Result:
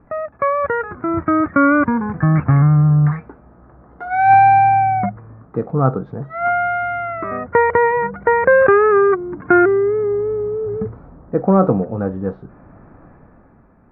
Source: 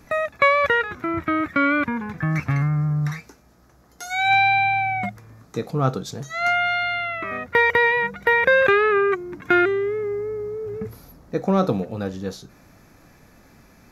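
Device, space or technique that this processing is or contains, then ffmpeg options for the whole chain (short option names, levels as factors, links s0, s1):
action camera in a waterproof case: -af "lowpass=f=1400:w=0.5412,lowpass=f=1400:w=1.3066,dynaudnorm=f=160:g=11:m=3.76" -ar 48000 -c:a aac -b:a 96k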